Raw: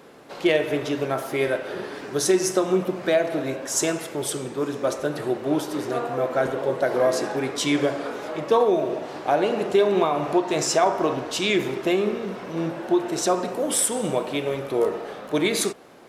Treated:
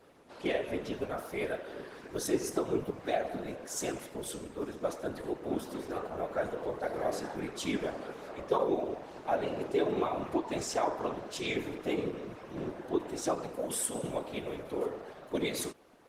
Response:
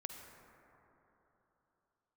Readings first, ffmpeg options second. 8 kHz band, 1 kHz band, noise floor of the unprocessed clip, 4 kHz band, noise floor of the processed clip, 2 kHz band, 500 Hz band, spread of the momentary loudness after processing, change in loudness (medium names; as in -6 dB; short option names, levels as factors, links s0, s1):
-12.5 dB, -10.5 dB, -38 dBFS, -13.0 dB, -51 dBFS, -12.0 dB, -11.5 dB, 8 LU, -11.5 dB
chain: -af "afftfilt=real='hypot(re,im)*cos(2*PI*random(0))':imag='hypot(re,im)*sin(2*PI*random(1))':win_size=512:overlap=0.75,volume=0.596" -ar 48000 -c:a libopus -b:a 20k